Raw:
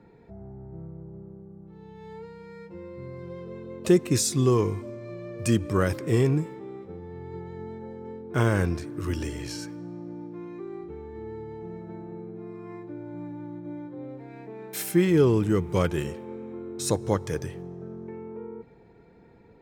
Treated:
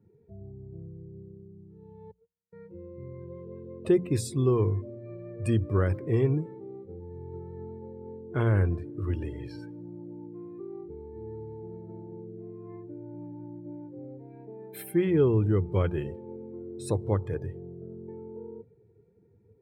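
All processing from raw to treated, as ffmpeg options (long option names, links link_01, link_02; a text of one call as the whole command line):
ffmpeg -i in.wav -filter_complex "[0:a]asettb=1/sr,asplit=3[link_01][link_02][link_03];[link_01]atrim=end=2.114[link_04];[link_02]atrim=start=2.11:end=2.53,asetpts=PTS-STARTPTS,afade=type=in:duration=0.004:curve=qsin,afade=type=out:start_time=0.416:duration=0.004:curve=qsin,agate=range=-36dB:threshold=-38dB:ratio=16:release=100:detection=peak,lowshelf=frequency=410:gain=4.5[link_05];[link_03]atrim=start=2.526[link_06];[link_04][link_05]acrossfade=duration=0.004:curve1=hsin:curve2=qsin[link_07];[link_07][link_06]acrossfade=duration=0.004:curve1=qsin:curve2=hsin,equalizer=frequency=100:width_type=o:width=0.67:gain=10,equalizer=frequency=400:width_type=o:width=0.67:gain=4,equalizer=frequency=6300:width_type=o:width=0.67:gain=-11,afftdn=noise_reduction=17:noise_floor=-41,bandreject=frequency=60:width_type=h:width=6,bandreject=frequency=120:width_type=h:width=6,bandreject=frequency=180:width_type=h:width=6,volume=-6dB" out.wav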